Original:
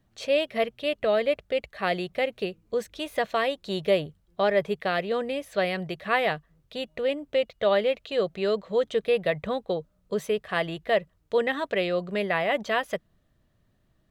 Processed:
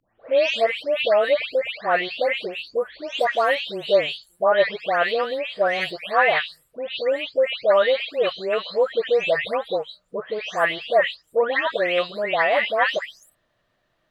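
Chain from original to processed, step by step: spectral delay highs late, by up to 0.383 s; three-band isolator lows -17 dB, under 460 Hz, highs -13 dB, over 5300 Hz; gain +8.5 dB

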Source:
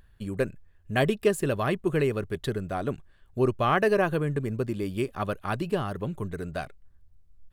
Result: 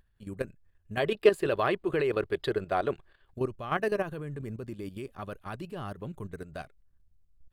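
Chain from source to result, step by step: spectral gain 0.99–3.32, 320–5100 Hz +10 dB; level quantiser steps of 11 dB; gain -4 dB

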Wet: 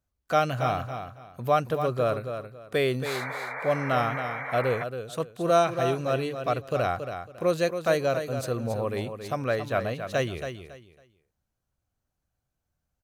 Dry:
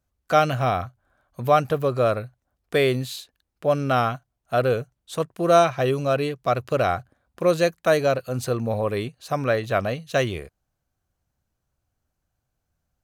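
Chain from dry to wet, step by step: feedback echo 0.276 s, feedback 24%, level -8.5 dB; painted sound noise, 3.05–4.84, 440–2400 Hz -30 dBFS; gain -5 dB

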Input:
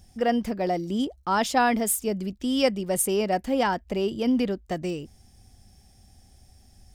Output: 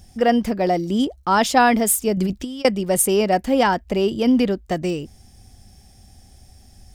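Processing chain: 2.17–2.65 negative-ratio compressor -30 dBFS, ratio -0.5; gain +6.5 dB

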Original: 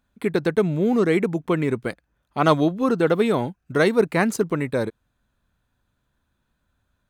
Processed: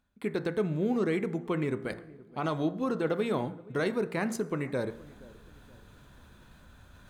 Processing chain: high shelf 10000 Hz -5 dB; limiter -12.5 dBFS, peak gain reduction 8.5 dB; reverse; upward compressor, threshold -25 dBFS; reverse; de-hum 57.39 Hz, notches 38; on a send: darkening echo 0.474 s, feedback 48%, low-pass 880 Hz, level -20 dB; on the sum: two-slope reverb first 0.65 s, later 2.6 s, from -18 dB, DRR 17.5 dB; gain -7.5 dB

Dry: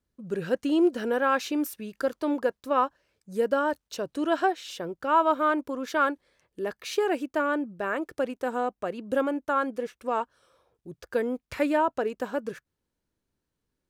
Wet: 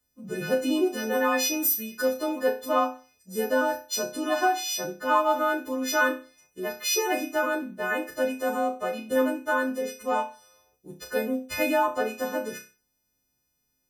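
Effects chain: frequency quantiser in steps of 3 st; flutter echo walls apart 5.3 m, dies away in 0.34 s

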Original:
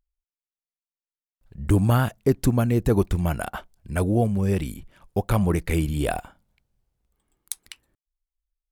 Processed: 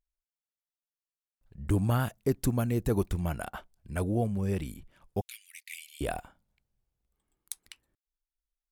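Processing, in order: 2–3.14 high shelf 5700 Hz +5.5 dB; 5.21–6.01 steep high-pass 2100 Hz 48 dB/oct; gain -7.5 dB

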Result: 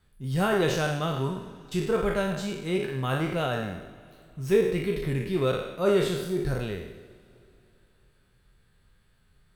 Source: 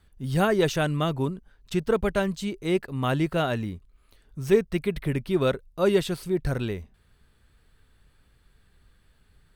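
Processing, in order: spectral trails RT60 0.89 s; two-slope reverb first 0.21 s, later 3.1 s, from -20 dB, DRR 7 dB; gain -5.5 dB

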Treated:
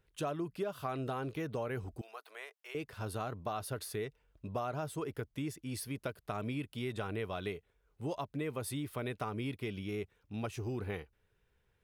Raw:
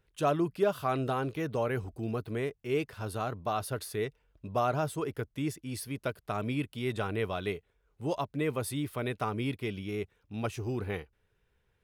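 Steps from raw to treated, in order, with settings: compressor 4:1, threshold -33 dBFS, peak gain reduction 10.5 dB; 2.01–2.75 HPF 690 Hz 24 dB/oct; gain -1.5 dB

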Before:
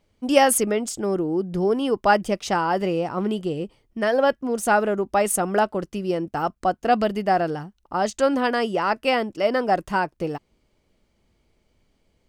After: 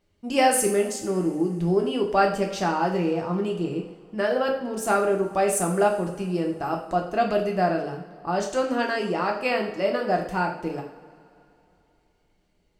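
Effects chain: speed mistake 25 fps video run at 24 fps; two-slope reverb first 0.53 s, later 2.9 s, from -20 dB, DRR 0.5 dB; gain -5 dB

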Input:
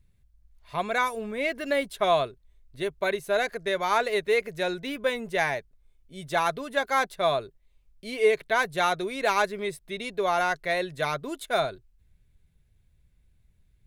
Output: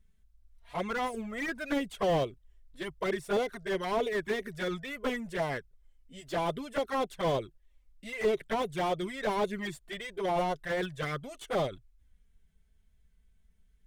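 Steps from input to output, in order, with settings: formant shift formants -2 st; envelope flanger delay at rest 4.7 ms, full sweep at -21.5 dBFS; slew limiter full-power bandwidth 39 Hz

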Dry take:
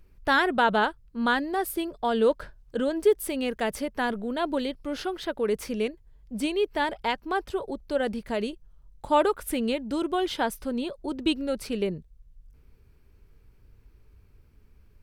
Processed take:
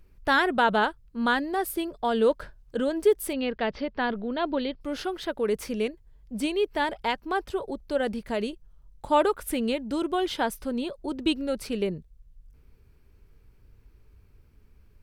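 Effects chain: 3.33–4.81 steep low-pass 4900 Hz 48 dB/oct

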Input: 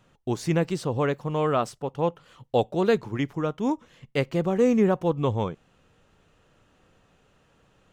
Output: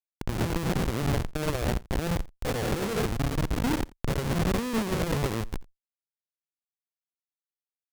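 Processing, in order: spectral dilation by 0.24 s; envelope flanger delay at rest 6.2 ms, full sweep at -17 dBFS; Schmitt trigger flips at -18.5 dBFS; added harmonics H 8 -12 dB, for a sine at -15.5 dBFS; on a send: echo 86 ms -23 dB; on the sum: gain -4.5 dB

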